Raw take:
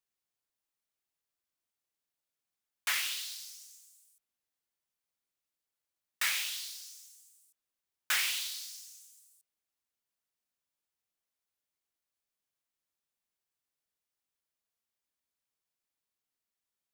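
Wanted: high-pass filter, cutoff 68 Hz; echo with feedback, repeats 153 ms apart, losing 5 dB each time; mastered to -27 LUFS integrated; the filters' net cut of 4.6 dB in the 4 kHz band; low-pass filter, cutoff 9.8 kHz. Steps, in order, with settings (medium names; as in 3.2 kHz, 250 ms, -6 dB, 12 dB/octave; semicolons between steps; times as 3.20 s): high-pass 68 Hz; low-pass 9.8 kHz; peaking EQ 4 kHz -6 dB; feedback delay 153 ms, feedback 56%, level -5 dB; trim +8.5 dB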